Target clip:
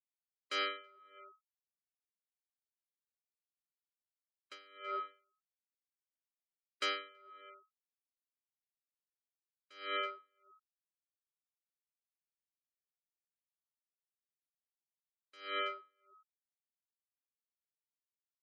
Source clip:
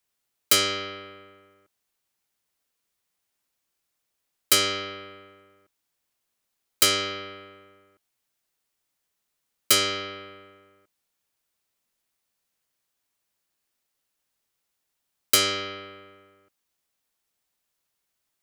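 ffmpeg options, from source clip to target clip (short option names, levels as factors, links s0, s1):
-filter_complex "[0:a]lowpass=1900,aemphasis=mode=production:type=riaa,afftfilt=real='re*gte(hypot(re,im),0.0355)':imag='im*gte(hypot(re,im),0.0355)':win_size=1024:overlap=0.75,equalizer=f=1400:w=0.31:g=4.5,areverse,acompressor=threshold=0.0126:ratio=6,areverse,asplit=2[s0][s1];[s1]adelay=326.5,volume=0.126,highshelf=f=4000:g=-7.35[s2];[s0][s2]amix=inputs=2:normalize=0,aeval=exprs='val(0)*pow(10,-28*(0.5-0.5*cos(2*PI*1.6*n/s))/20)':c=same,volume=1.68"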